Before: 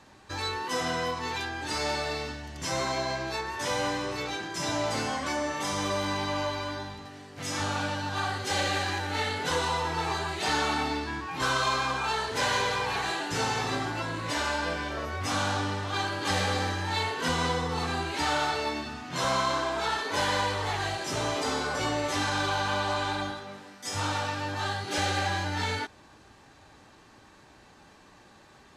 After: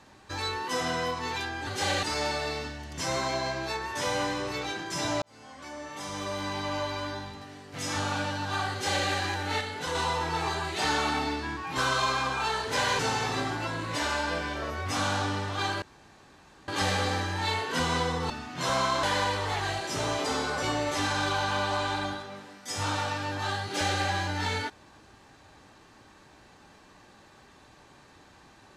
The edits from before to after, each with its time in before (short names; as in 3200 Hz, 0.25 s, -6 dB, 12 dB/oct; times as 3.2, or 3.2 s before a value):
4.86–6.67 fade in
8.36–8.72 copy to 1.67
9.25–9.59 gain -4.5 dB
12.63–13.34 cut
16.17 insert room tone 0.86 s
17.79–18.85 cut
19.58–20.2 cut